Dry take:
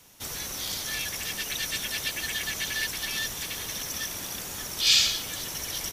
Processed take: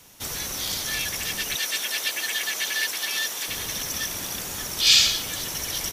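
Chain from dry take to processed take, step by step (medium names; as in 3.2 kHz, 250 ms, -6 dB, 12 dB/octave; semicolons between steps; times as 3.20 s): 1.56–3.48 s: high-pass 390 Hz 12 dB/octave; trim +4 dB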